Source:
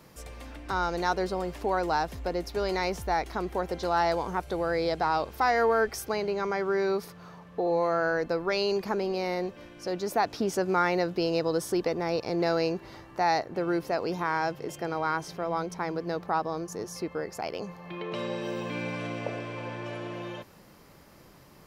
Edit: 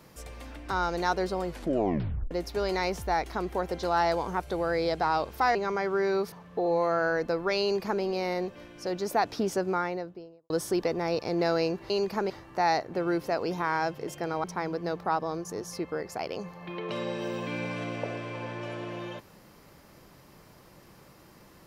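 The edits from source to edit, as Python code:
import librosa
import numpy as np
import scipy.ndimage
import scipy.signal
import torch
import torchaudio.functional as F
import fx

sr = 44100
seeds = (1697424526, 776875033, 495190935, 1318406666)

y = fx.studio_fade_out(x, sr, start_s=10.38, length_s=1.13)
y = fx.edit(y, sr, fx.tape_stop(start_s=1.47, length_s=0.84),
    fx.cut(start_s=5.55, length_s=0.75),
    fx.cut(start_s=7.07, length_s=0.26),
    fx.duplicate(start_s=8.63, length_s=0.4, to_s=12.91),
    fx.cut(start_s=15.05, length_s=0.62), tone=tone)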